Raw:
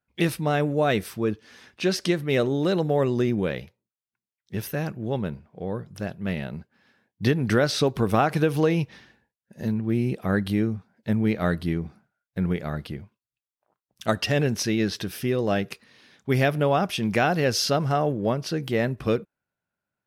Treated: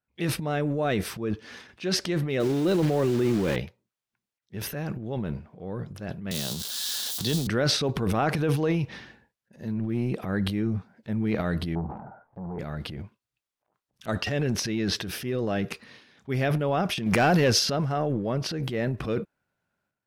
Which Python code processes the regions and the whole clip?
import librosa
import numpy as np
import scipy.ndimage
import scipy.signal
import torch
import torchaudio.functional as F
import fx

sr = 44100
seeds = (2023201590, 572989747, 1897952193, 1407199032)

y = fx.chain(x, sr, fx.zero_step(step_db=-31.0),
    fx.peak_eq(hz=330.0, db=7.5, octaves=0.24),
    fx.quant_dither(seeds[0], bits=6, dither='none'), at=(2.4, 3.56))
y = fx.chain(y, sr, fx.crossing_spikes(level_db=-21.5),
    fx.high_shelf_res(hz=2900.0, db=8.5, q=3.0),
    fx.band_squash(depth_pct=40), at=(6.31, 7.47))
y = fx.chain(y, sr, fx.leveller(passes=2),
    fx.ladder_lowpass(hz=960.0, resonance_pct=65),
    fx.pre_swell(db_per_s=22.0), at=(11.75, 12.59))
y = fx.chain(y, sr, fx.high_shelf(hz=11000.0, db=10.0),
    fx.leveller(passes=2), at=(17.06, 17.51))
y = fx.high_shelf(y, sr, hz=7300.0, db=-8.0)
y = fx.transient(y, sr, attack_db=-4, sustain_db=11)
y = F.gain(torch.from_numpy(y), -4.0).numpy()